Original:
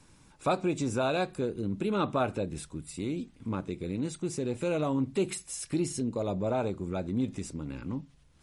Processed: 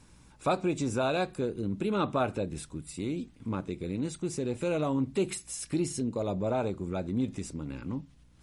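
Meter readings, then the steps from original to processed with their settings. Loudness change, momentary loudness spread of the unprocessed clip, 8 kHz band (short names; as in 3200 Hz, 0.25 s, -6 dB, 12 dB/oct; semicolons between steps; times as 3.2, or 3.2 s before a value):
0.0 dB, 8 LU, 0.0 dB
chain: hum 60 Hz, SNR 30 dB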